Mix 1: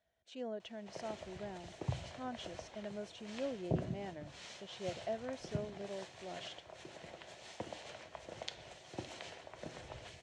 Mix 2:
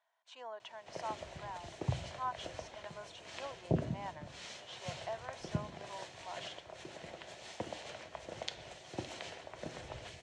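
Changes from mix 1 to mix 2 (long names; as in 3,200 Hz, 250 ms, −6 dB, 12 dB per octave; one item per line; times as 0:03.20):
speech: add high-pass with resonance 980 Hz, resonance Q 7
background +3.0 dB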